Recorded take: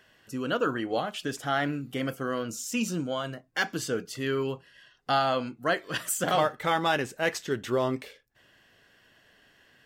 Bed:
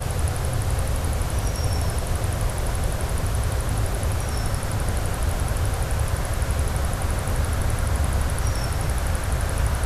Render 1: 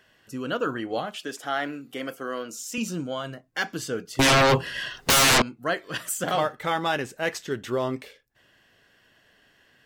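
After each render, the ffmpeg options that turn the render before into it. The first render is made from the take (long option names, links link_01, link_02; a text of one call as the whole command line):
ffmpeg -i in.wav -filter_complex "[0:a]asettb=1/sr,asplit=3[link_01][link_02][link_03];[link_01]atrim=end=1.164[link_04];[link_02]atrim=start=1.16:end=2.78,asetpts=PTS-STARTPTS,afade=type=in:duration=0.004:curve=qsin,afade=type=out:start_time=1.616:duration=0.004:curve=qsin,highpass=290[link_05];[link_03]atrim=start=2.776[link_06];[link_04][link_05]acrossfade=duration=0.004:curve1=hsin:curve2=qsin[link_07];[link_07][link_06]acrossfade=duration=0.004:curve1=qsin:curve2=hsin,asettb=1/sr,asplit=3[link_08][link_09][link_10];[link_08]atrim=end=4.194[link_11];[link_09]atrim=start=4.19:end=5.42,asetpts=PTS-STARTPTS,afade=type=in:duration=0.004:curve=qsin,afade=type=out:start_time=1.226:duration=0.004:curve=qsin,aeval=exprs='0.188*sin(PI/2*8.91*val(0)/0.188)':channel_layout=same[link_12];[link_10]atrim=start=5.416[link_13];[link_11][link_12]acrossfade=duration=0.004:curve1=hsin:curve2=qsin[link_14];[link_14][link_13]acrossfade=duration=0.004:curve1=qsin:curve2=hsin" out.wav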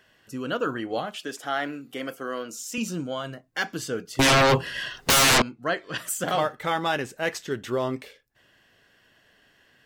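ffmpeg -i in.wav -filter_complex "[0:a]asettb=1/sr,asplit=3[link_01][link_02][link_03];[link_01]atrim=end=5.474[link_04];[link_02]atrim=start=5.47:end=5.98,asetpts=PTS-STARTPTS,afade=type=in:duration=0.004:curve=qsin,afade=type=out:start_time=0.506:duration=0.004:curve=qsin,lowpass=6900[link_05];[link_03]atrim=start=5.976[link_06];[link_04][link_05]acrossfade=duration=0.004:curve1=hsin:curve2=qsin[link_07];[link_07][link_06]acrossfade=duration=0.004:curve1=qsin:curve2=hsin" out.wav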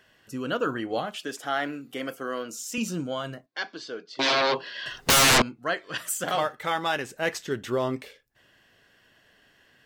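ffmpeg -i in.wav -filter_complex "[0:a]asettb=1/sr,asplit=3[link_01][link_02][link_03];[link_01]atrim=end=3.464[link_04];[link_02]atrim=start=3.46:end=4.86,asetpts=PTS-STARTPTS,afade=type=in:duration=0.004:curve=qsin,afade=type=out:start_time=1.396:duration=0.004:curve=qsin,highpass=450,equalizer=frequency=490:width_type=q:width=4:gain=-4,equalizer=frequency=790:width_type=q:width=4:gain=-5,equalizer=frequency=1300:width_type=q:width=4:gain=-6,equalizer=frequency=1900:width_type=q:width=4:gain=-6,equalizer=frequency=2800:width_type=q:width=4:gain=-6,equalizer=frequency=4200:width_type=q:width=4:gain=3,lowpass=frequency=4700:width=0.5412,lowpass=frequency=4700:width=1.3066[link_05];[link_03]atrim=start=4.856[link_06];[link_04][link_05]acrossfade=duration=0.004:curve1=hsin:curve2=qsin[link_07];[link_07][link_06]acrossfade=duration=0.004:curve1=qsin:curve2=hsin,asettb=1/sr,asplit=3[link_08][link_09][link_10];[link_08]atrim=end=5.594[link_11];[link_09]atrim=start=5.59:end=7.09,asetpts=PTS-STARTPTS,afade=type=in:duration=0.004:curve=qsin,afade=type=out:start_time=1.496:duration=0.004:curve=qsin,lowshelf=frequency=450:gain=-6[link_12];[link_10]atrim=start=7.086[link_13];[link_11][link_12]acrossfade=duration=0.004:curve1=hsin:curve2=qsin[link_14];[link_14][link_13]acrossfade=duration=0.004:curve1=qsin:curve2=hsin" out.wav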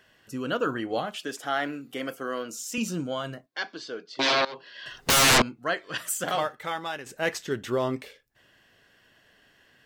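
ffmpeg -i in.wav -filter_complex "[0:a]asplit=3[link_01][link_02][link_03];[link_01]atrim=end=4.45,asetpts=PTS-STARTPTS,afade=type=out:start_time=4.446:duration=0.004:curve=hsin:silence=0.112202[link_04];[link_02]atrim=start=4.45:end=7.06,asetpts=PTS-STARTPTS,afade=type=in:duration=0.86:silence=0.112202,afade=type=out:start_time=1.78:duration=0.83:silence=0.334965[link_05];[link_03]atrim=start=7.06,asetpts=PTS-STARTPTS,afade=type=in:duration=0.004:curve=hsin:silence=0.334965[link_06];[link_04][link_05][link_06]concat=n=3:v=0:a=1" out.wav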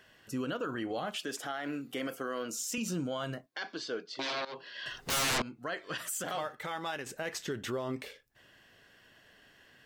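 ffmpeg -i in.wav -af "acompressor=threshold=-28dB:ratio=6,alimiter=level_in=2.5dB:limit=-24dB:level=0:latency=1:release=44,volume=-2.5dB" out.wav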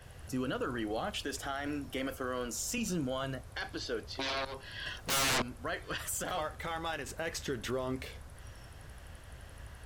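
ffmpeg -i in.wav -i bed.wav -filter_complex "[1:a]volume=-26.5dB[link_01];[0:a][link_01]amix=inputs=2:normalize=0" out.wav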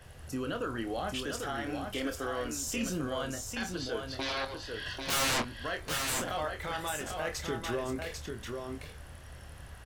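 ffmpeg -i in.wav -filter_complex "[0:a]asplit=2[link_01][link_02];[link_02]adelay=26,volume=-8dB[link_03];[link_01][link_03]amix=inputs=2:normalize=0,aecho=1:1:794:0.562" out.wav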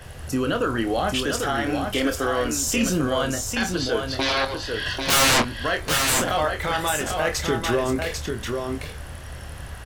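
ffmpeg -i in.wav -af "volume=11.5dB" out.wav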